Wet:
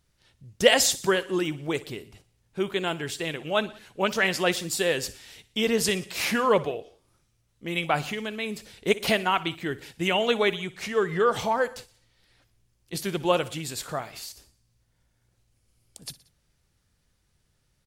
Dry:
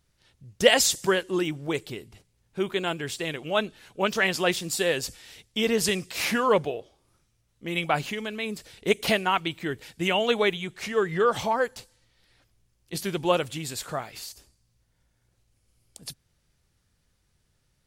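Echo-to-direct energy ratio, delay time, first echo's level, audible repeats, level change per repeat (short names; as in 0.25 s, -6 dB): -17.0 dB, 60 ms, -18.5 dB, 3, -4.5 dB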